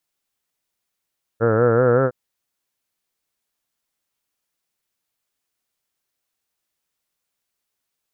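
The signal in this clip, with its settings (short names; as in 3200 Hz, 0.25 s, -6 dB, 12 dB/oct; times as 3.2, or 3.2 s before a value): formant-synthesis vowel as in heard, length 0.71 s, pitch 110 Hz, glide +3 st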